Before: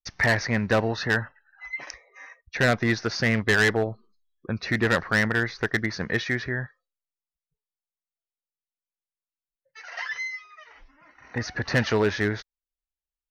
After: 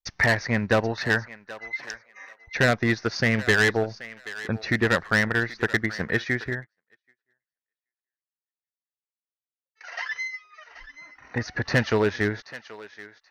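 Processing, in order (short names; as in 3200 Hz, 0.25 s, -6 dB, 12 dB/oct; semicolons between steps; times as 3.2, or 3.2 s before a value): transient shaper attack +2 dB, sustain -5 dB; thinning echo 0.78 s, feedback 21%, high-pass 760 Hz, level -14 dB; 6.5–9.81 upward expander 2.5:1, over -50 dBFS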